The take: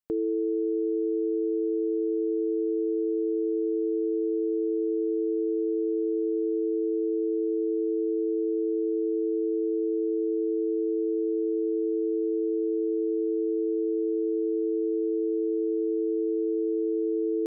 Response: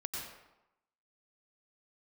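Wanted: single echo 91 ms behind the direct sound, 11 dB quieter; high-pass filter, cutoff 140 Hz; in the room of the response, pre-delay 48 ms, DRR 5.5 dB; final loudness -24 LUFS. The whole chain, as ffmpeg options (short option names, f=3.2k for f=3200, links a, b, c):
-filter_complex "[0:a]highpass=140,aecho=1:1:91:0.282,asplit=2[a][b];[1:a]atrim=start_sample=2205,adelay=48[c];[b][c]afir=irnorm=-1:irlink=0,volume=-6.5dB[d];[a][d]amix=inputs=2:normalize=0,volume=-1dB"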